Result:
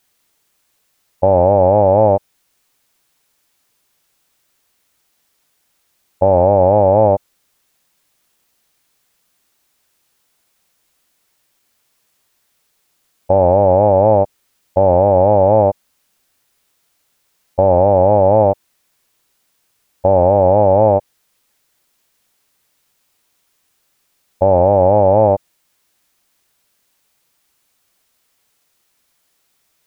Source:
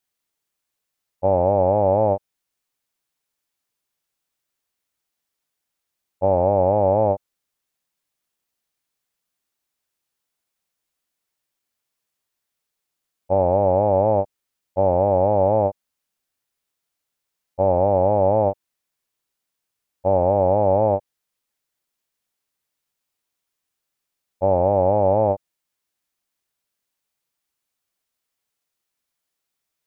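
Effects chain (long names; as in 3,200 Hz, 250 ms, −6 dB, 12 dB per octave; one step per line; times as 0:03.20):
boost into a limiter +17.5 dB
level −1 dB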